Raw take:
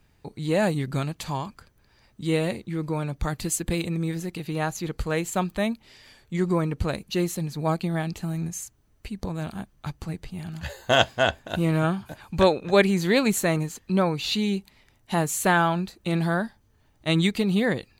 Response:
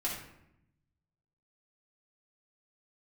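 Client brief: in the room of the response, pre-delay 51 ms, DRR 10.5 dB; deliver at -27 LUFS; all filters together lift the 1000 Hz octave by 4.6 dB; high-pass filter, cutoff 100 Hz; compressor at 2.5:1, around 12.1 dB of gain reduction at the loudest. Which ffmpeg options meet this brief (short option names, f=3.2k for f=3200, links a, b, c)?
-filter_complex "[0:a]highpass=100,equalizer=f=1k:t=o:g=6,acompressor=threshold=-30dB:ratio=2.5,asplit=2[a][b];[1:a]atrim=start_sample=2205,adelay=51[c];[b][c]afir=irnorm=-1:irlink=0,volume=-14.5dB[d];[a][d]amix=inputs=2:normalize=0,volume=5dB"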